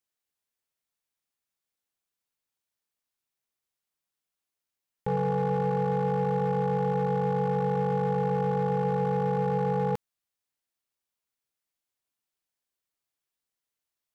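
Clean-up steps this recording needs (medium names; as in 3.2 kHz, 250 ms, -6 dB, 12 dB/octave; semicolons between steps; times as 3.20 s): clip repair -22 dBFS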